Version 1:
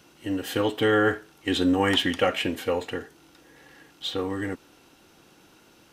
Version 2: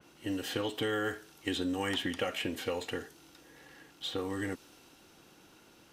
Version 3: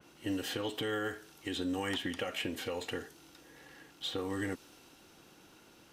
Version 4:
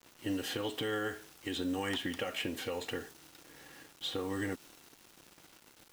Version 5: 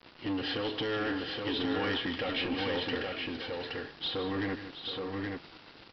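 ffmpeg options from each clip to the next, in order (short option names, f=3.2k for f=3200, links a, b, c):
-filter_complex "[0:a]acrossover=split=2300|6400[a][b][c];[a]acompressor=threshold=-28dB:ratio=4[d];[b]acompressor=threshold=-41dB:ratio=4[e];[c]acompressor=threshold=-54dB:ratio=4[f];[d][e][f]amix=inputs=3:normalize=0,adynamicequalizer=threshold=0.00355:dfrequency=3100:dqfactor=0.7:tfrequency=3100:tqfactor=0.7:attack=5:release=100:ratio=0.375:range=3:mode=boostabove:tftype=highshelf,volume=-3.5dB"
-af "alimiter=level_in=1dB:limit=-24dB:level=0:latency=1:release=174,volume=-1dB"
-af "acrusher=bits=8:mix=0:aa=0.000001"
-af "aresample=11025,asoftclip=type=tanh:threshold=-36dB,aresample=44100,aecho=1:1:156|721|822:0.266|0.251|0.668,volume=7dB"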